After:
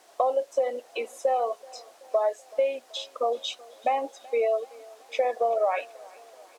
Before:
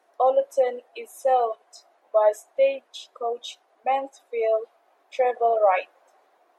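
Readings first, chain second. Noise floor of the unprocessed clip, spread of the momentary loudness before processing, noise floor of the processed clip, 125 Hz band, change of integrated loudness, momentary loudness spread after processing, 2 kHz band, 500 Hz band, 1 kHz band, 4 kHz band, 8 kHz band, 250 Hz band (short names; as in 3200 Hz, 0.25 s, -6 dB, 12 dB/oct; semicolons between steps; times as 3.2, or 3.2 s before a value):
-65 dBFS, 16 LU, -55 dBFS, n/a, -4.0 dB, 17 LU, -3.0 dB, -3.5 dB, -4.0 dB, +3.0 dB, -0.5 dB, -0.5 dB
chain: compressor, threshold -28 dBFS, peak gain reduction 13.5 dB; added noise blue -57 dBFS; air absorption 65 m; on a send: feedback echo 0.38 s, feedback 57%, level -23 dB; on the sum: gain +6 dB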